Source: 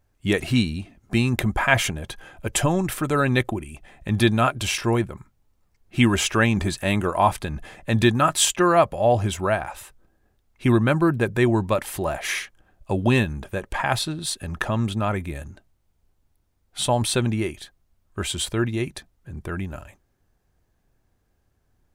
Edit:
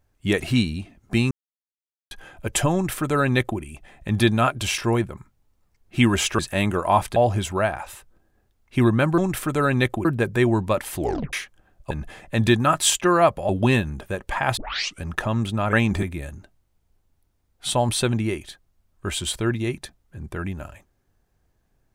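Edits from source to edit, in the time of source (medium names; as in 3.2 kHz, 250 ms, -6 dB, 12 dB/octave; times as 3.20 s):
1.31–2.11 s: mute
2.73–3.60 s: copy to 11.06 s
6.39–6.69 s: move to 15.16 s
7.46–9.04 s: move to 12.92 s
11.98 s: tape stop 0.36 s
14.00 s: tape start 0.46 s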